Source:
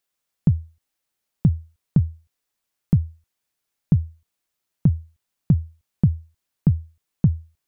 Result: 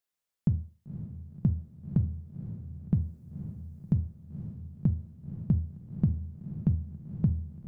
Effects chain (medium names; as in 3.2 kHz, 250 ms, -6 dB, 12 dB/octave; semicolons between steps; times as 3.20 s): 2.94–3.95 s: tone controls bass 0 dB, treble +6 dB; echo that smears into a reverb 524 ms, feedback 49%, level -10 dB; reverberation RT60 0.45 s, pre-delay 5 ms, DRR 10 dB; trim -8 dB